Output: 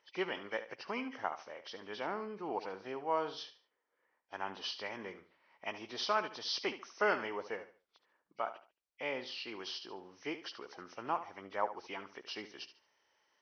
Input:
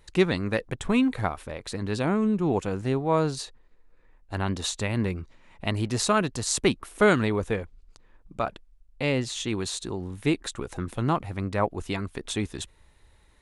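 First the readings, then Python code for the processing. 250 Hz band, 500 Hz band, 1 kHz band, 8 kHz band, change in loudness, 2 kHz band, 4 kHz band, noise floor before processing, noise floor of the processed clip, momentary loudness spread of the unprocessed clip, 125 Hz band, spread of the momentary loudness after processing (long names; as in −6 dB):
−20.0 dB, −12.0 dB, −7.0 dB, −22.0 dB, −12.0 dB, −8.5 dB, −7.5 dB, −58 dBFS, −84 dBFS, 11 LU, −31.0 dB, 14 LU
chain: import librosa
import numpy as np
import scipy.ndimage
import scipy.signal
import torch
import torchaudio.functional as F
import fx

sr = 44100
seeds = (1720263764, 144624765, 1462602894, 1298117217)

y = fx.freq_compress(x, sr, knee_hz=1900.0, ratio=1.5)
y = scipy.signal.sosfilt(scipy.signal.butter(2, 520.0, 'highpass', fs=sr, output='sos'), y)
y = fx.dynamic_eq(y, sr, hz=890.0, q=6.1, threshold_db=-47.0, ratio=4.0, max_db=5)
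y = fx.echo_feedback(y, sr, ms=72, feedback_pct=30, wet_db=-12.5)
y = F.gain(torch.from_numpy(y), -8.5).numpy()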